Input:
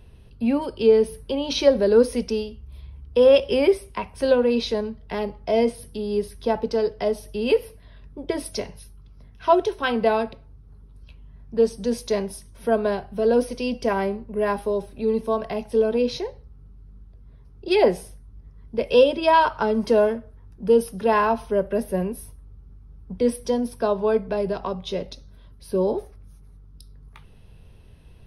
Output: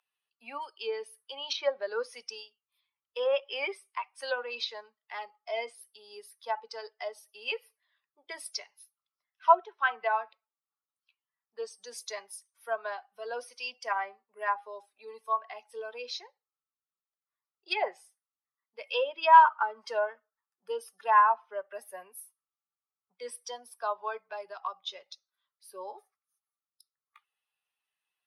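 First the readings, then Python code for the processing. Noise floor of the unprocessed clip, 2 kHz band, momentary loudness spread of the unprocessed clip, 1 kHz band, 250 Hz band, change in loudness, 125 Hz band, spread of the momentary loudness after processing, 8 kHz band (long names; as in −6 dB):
−48 dBFS, −2.5 dB, 13 LU, −0.5 dB, below −30 dB, −8.0 dB, below −40 dB, 21 LU, −7.0 dB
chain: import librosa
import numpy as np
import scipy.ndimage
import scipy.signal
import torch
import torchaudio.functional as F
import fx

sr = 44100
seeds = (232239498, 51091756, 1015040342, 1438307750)

y = fx.bin_expand(x, sr, power=1.5)
y = fx.ladder_highpass(y, sr, hz=800.0, resonance_pct=30)
y = fx.env_lowpass_down(y, sr, base_hz=1700.0, full_db=-32.0)
y = y * librosa.db_to_amplitude(7.5)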